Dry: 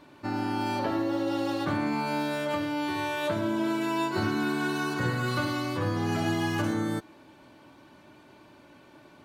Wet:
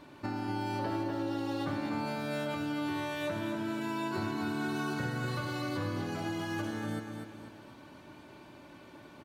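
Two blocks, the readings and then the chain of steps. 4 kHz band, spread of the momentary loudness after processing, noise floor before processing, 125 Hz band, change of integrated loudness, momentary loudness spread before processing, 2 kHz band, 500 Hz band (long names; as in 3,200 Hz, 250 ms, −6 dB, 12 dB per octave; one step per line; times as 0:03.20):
−6.5 dB, 18 LU, −55 dBFS, −5.0 dB, −6.0 dB, 2 LU, −6.5 dB, −6.5 dB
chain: low-shelf EQ 130 Hz +3.5 dB
downward compressor, threshold −33 dBFS, peak gain reduction 10.5 dB
repeating echo 245 ms, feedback 41%, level −6 dB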